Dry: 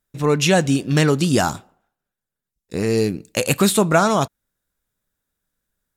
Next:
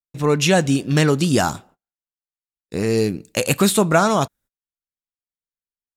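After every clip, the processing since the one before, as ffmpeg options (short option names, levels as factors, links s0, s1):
-af "agate=range=0.0398:threshold=0.00398:ratio=16:detection=peak"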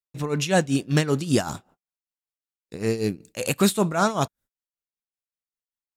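-af "tremolo=f=5.2:d=0.79,volume=0.794"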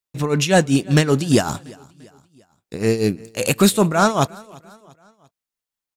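-af "acontrast=63,aecho=1:1:344|688|1032:0.0631|0.0303|0.0145"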